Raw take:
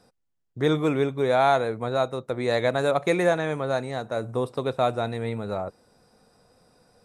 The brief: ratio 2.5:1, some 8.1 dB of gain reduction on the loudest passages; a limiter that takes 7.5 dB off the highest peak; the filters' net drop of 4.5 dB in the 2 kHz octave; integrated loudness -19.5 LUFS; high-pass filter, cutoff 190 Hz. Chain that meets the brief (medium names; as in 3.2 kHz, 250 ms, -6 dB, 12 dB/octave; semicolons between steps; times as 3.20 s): high-pass 190 Hz; peaking EQ 2 kHz -6 dB; compression 2.5:1, threshold -30 dBFS; trim +16.5 dB; peak limiter -9.5 dBFS